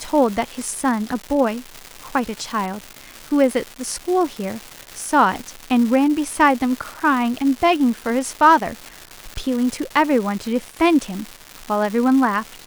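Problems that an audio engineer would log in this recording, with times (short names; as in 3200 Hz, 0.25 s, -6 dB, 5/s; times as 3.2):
crackle 480/s -25 dBFS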